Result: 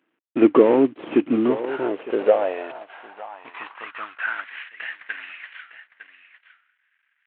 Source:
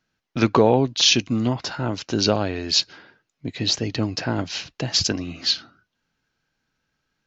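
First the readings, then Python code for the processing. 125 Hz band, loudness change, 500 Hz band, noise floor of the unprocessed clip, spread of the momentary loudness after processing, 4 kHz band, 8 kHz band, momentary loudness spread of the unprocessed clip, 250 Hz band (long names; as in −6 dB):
below −15 dB, 0.0 dB, +4.0 dB, −78 dBFS, 22 LU, −23.0 dB, can't be measured, 12 LU, +2.0 dB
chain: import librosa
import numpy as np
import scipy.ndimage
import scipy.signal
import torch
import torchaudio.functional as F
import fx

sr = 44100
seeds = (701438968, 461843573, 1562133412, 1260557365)

y = fx.cvsd(x, sr, bps=16000)
y = y + 10.0 ** (-13.0 / 20.0) * np.pad(y, (int(907 * sr / 1000.0), 0))[:len(y)]
y = fx.filter_sweep_highpass(y, sr, from_hz=310.0, to_hz=1800.0, start_s=1.39, end_s=4.64, q=3.9)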